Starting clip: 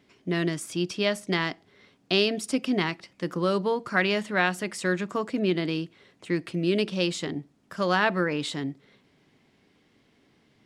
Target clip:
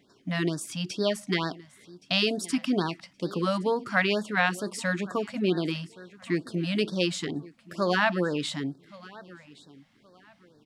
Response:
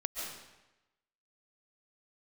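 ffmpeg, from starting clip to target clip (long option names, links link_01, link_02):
-af "equalizer=frequency=63:width=1.5:gain=-6.5,aecho=1:1:1120|2240:0.0944|0.0236,afftfilt=real='re*(1-between(b*sr/1024,340*pow(2600/340,0.5+0.5*sin(2*PI*2.2*pts/sr))/1.41,340*pow(2600/340,0.5+0.5*sin(2*PI*2.2*pts/sr))*1.41))':imag='im*(1-between(b*sr/1024,340*pow(2600/340,0.5+0.5*sin(2*PI*2.2*pts/sr))/1.41,340*pow(2600/340,0.5+0.5*sin(2*PI*2.2*pts/sr))*1.41))':win_size=1024:overlap=0.75"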